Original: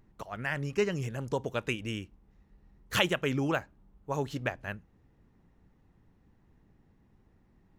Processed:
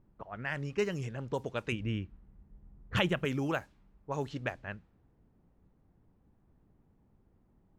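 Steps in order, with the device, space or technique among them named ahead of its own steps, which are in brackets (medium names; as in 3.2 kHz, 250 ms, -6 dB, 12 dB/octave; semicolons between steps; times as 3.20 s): cassette deck with a dynamic noise filter (white noise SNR 31 dB; level-controlled noise filter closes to 830 Hz, open at -26 dBFS); 1.72–3.25 s: tone controls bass +8 dB, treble -8 dB; trim -3 dB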